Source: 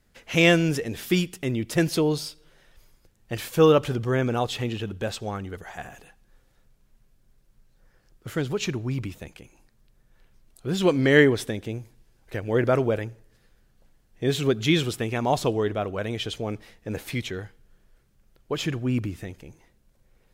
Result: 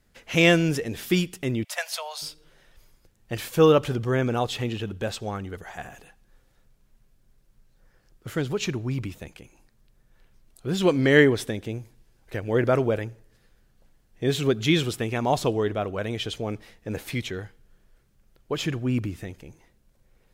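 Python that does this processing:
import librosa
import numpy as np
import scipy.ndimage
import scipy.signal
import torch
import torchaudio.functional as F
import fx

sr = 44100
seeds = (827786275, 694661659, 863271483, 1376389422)

y = fx.steep_highpass(x, sr, hz=580.0, slope=72, at=(1.63, 2.21), fade=0.02)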